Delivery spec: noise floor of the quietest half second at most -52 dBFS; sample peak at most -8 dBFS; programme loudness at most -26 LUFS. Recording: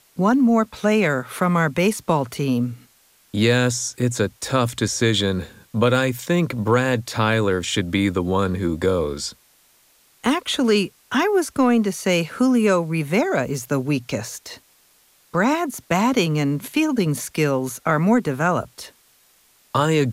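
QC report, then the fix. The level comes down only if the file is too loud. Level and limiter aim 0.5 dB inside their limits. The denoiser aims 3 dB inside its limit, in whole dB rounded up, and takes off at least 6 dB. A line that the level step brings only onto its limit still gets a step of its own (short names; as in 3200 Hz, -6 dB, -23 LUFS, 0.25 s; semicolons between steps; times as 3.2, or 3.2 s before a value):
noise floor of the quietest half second -57 dBFS: OK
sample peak -5.5 dBFS: fail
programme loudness -21.0 LUFS: fail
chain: gain -5.5 dB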